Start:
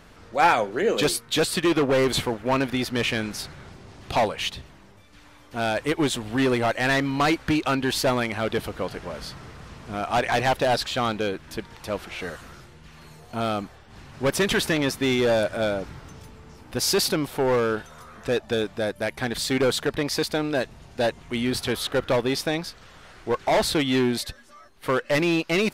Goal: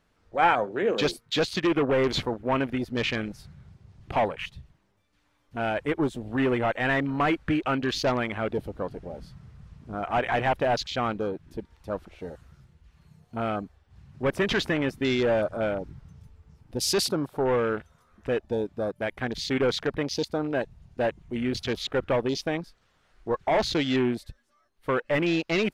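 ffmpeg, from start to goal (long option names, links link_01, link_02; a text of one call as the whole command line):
ffmpeg -i in.wav -af "afwtdn=0.0282,volume=-2.5dB" out.wav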